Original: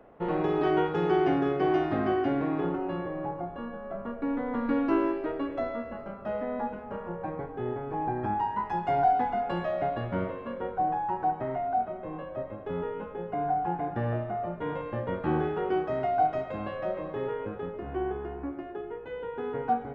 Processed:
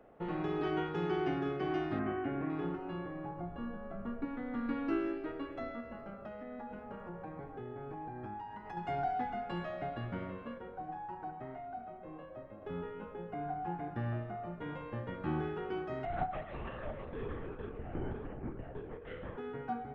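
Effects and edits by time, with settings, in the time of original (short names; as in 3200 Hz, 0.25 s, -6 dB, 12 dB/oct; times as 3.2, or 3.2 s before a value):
1.99–2.5 LPF 2600 Hz 24 dB/oct
3.37–4.25 low shelf 210 Hz +7.5 dB
5.8–8.77 compressor, threshold -33 dBFS
10.58–12.62 flange 1.8 Hz, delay 2.5 ms, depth 2.3 ms, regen -86%
16.05–19.37 LPC vocoder at 8 kHz whisper
whole clip: notch 1000 Hz, Q 12; de-hum 93.75 Hz, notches 22; dynamic EQ 580 Hz, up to -7 dB, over -42 dBFS, Q 1.3; gain -5 dB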